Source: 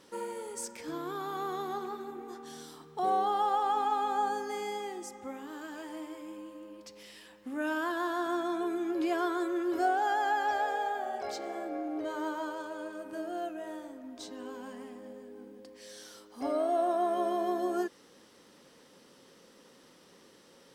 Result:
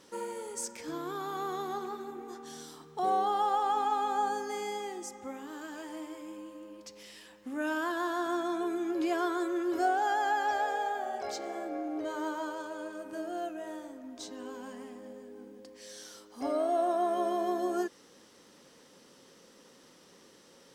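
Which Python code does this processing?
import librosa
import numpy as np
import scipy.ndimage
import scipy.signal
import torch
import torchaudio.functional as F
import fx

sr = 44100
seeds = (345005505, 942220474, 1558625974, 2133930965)

y = fx.peak_eq(x, sr, hz=6500.0, db=4.0, octaves=0.62)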